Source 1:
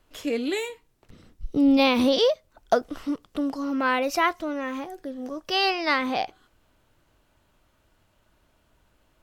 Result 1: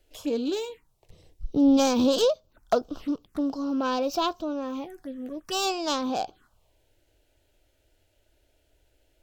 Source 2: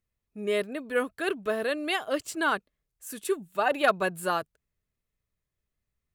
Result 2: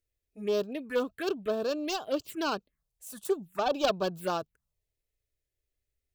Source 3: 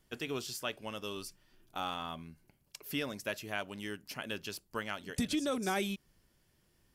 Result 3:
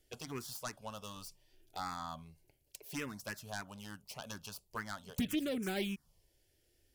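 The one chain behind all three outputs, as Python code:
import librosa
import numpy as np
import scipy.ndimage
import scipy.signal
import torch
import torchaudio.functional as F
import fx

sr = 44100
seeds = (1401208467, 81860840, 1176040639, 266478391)

y = fx.self_delay(x, sr, depth_ms=0.17)
y = fx.env_phaser(y, sr, low_hz=180.0, high_hz=2000.0, full_db=-27.0)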